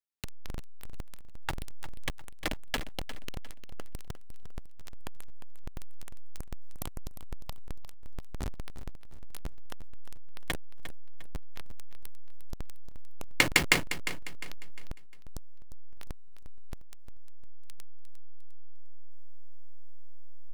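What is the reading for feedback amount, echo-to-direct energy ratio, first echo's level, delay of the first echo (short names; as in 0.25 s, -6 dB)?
37%, -11.5 dB, -12.0 dB, 0.353 s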